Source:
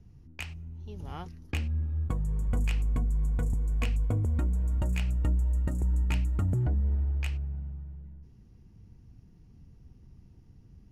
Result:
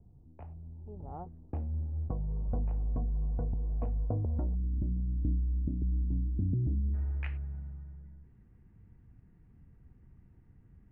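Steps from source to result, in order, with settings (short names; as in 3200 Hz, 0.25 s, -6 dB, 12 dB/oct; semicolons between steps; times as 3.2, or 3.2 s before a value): ladder low-pass 870 Hz, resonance 45%, from 4.54 s 330 Hz, from 6.93 s 2200 Hz; gain +4.5 dB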